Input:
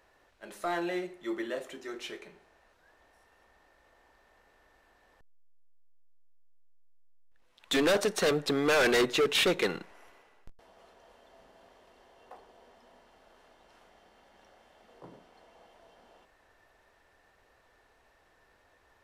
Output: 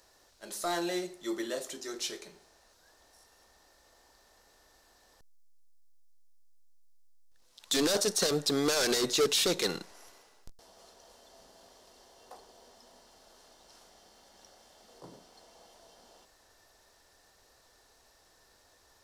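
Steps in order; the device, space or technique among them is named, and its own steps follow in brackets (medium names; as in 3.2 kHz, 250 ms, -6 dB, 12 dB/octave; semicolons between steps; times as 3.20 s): over-bright horn tweeter (resonant high shelf 3.5 kHz +11.5 dB, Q 1.5; peak limiter -17.5 dBFS, peak gain reduction 11 dB)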